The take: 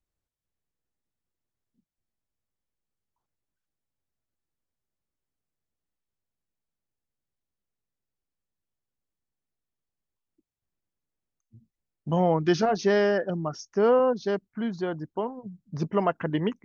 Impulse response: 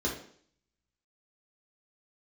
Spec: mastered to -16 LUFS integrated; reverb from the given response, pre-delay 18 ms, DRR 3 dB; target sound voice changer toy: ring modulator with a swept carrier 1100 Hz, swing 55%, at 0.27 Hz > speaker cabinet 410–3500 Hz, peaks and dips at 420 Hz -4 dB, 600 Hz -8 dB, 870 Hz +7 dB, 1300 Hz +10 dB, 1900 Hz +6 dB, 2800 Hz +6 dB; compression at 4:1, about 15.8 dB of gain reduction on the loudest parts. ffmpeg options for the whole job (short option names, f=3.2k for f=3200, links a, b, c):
-filter_complex "[0:a]acompressor=threshold=-37dB:ratio=4,asplit=2[a][b];[1:a]atrim=start_sample=2205,adelay=18[c];[b][c]afir=irnorm=-1:irlink=0,volume=-10dB[d];[a][d]amix=inputs=2:normalize=0,aeval=exprs='val(0)*sin(2*PI*1100*n/s+1100*0.55/0.27*sin(2*PI*0.27*n/s))':c=same,highpass=410,equalizer=f=420:t=q:w=4:g=-4,equalizer=f=600:t=q:w=4:g=-8,equalizer=f=870:t=q:w=4:g=7,equalizer=f=1.3k:t=q:w=4:g=10,equalizer=f=1.9k:t=q:w=4:g=6,equalizer=f=2.8k:t=q:w=4:g=6,lowpass=f=3.5k:w=0.5412,lowpass=f=3.5k:w=1.3066,volume=15.5dB"